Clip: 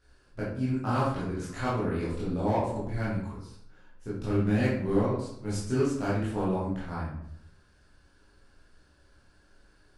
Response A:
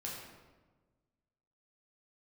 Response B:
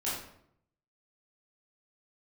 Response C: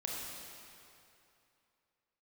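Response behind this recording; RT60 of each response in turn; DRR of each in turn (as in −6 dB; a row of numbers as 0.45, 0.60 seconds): B; 1.3, 0.70, 2.8 seconds; −4.5, −9.5, −3.5 decibels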